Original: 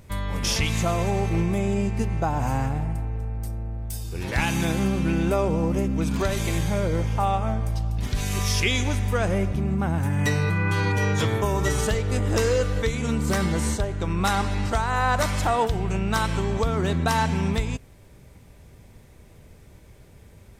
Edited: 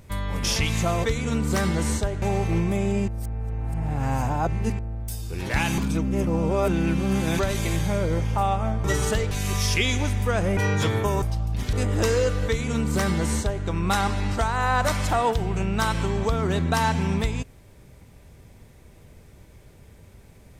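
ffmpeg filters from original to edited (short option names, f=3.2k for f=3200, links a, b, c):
-filter_complex "[0:a]asplit=12[a][b][c][d][e][f][g][h][i][j][k][l];[a]atrim=end=1.042[m];[b]atrim=start=12.808:end=13.992[n];[c]atrim=start=1.038:end=1.902[o];[d]atrim=start=1.898:end=3.612,asetpts=PTS-STARTPTS,areverse[p];[e]atrim=start=3.608:end=4.602[q];[f]atrim=start=4.598:end=6.212,asetpts=PTS-STARTPTS,areverse[r];[g]atrim=start=6.208:end=7.662[s];[h]atrim=start=11.598:end=12.072[t];[i]atrim=start=8.168:end=9.432[u];[j]atrim=start=10.948:end=11.602[v];[k]atrim=start=7.658:end=8.172[w];[l]atrim=start=12.068[x];[m][n]acrossfade=d=0.004:c1=hsin:c2=hsin[y];[y][o]acrossfade=d=0.004:c1=hsin:c2=hsin[z];[z][p]acrossfade=d=0.004:c1=hsin:c2=hsin[aa];[aa][q]acrossfade=d=0.004:c1=hsin:c2=hsin[ab];[ab][r]acrossfade=d=0.004:c1=hsin:c2=hsin[ac];[ac][s]acrossfade=d=0.004:c1=hsin:c2=hsin[ad];[ad][t]acrossfade=d=0.004:c1=hsin:c2=hsin[ae];[ae][u]acrossfade=d=0.004:c1=hsin:c2=hsin[af];[af][v]acrossfade=d=0.004:c1=hsin:c2=hsin[ag];[ag][w]acrossfade=d=0.004:c1=hsin:c2=hsin[ah];[ah][x]acrossfade=d=0.004:c1=hsin:c2=hsin"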